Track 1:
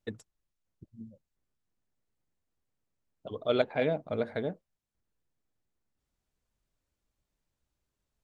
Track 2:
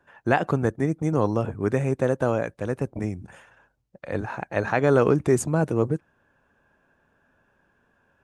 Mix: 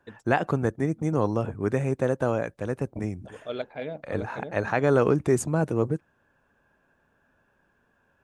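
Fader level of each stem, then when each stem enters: -6.0 dB, -2.0 dB; 0.00 s, 0.00 s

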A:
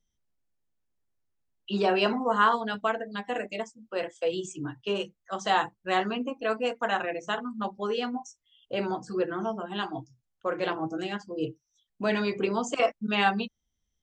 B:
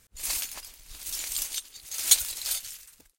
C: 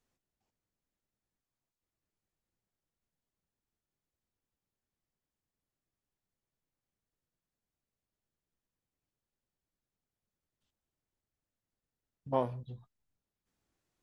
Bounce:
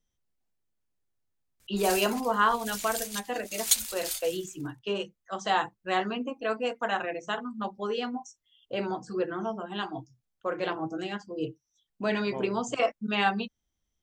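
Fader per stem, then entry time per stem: -1.5 dB, -4.0 dB, -8.5 dB; 0.00 s, 1.60 s, 0.00 s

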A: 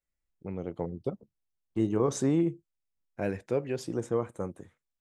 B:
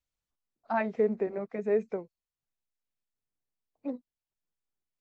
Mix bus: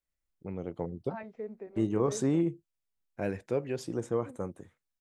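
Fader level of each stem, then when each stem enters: -1.5 dB, -13.5 dB; 0.00 s, 0.40 s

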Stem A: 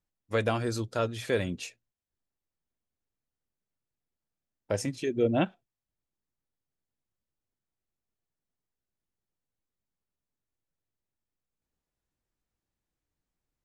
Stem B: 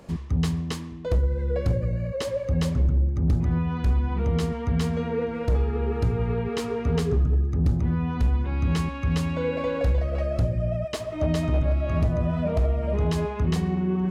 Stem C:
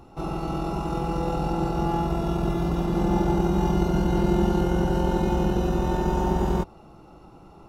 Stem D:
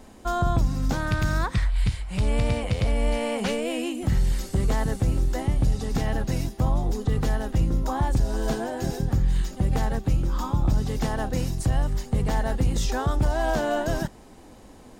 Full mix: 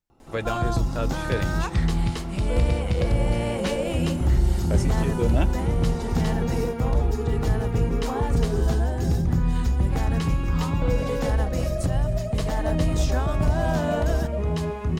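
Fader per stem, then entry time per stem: -1.0 dB, -1.5 dB, -11.5 dB, -2.0 dB; 0.00 s, 1.45 s, 0.10 s, 0.20 s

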